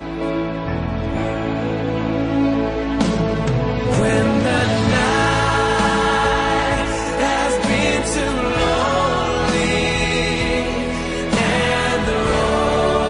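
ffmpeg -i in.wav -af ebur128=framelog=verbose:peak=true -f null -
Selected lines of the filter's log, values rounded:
Integrated loudness:
  I:         -18.2 LUFS
  Threshold: -28.2 LUFS
Loudness range:
  LRA:         3.4 LU
  Threshold: -37.9 LUFS
  LRA low:   -20.1 LUFS
  LRA high:  -16.7 LUFS
True peak:
  Peak:       -5.6 dBFS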